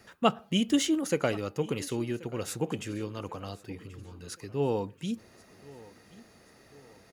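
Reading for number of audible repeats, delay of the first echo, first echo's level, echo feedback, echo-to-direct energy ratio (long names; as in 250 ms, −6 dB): 2, 1,082 ms, −21.0 dB, 44%, −20.0 dB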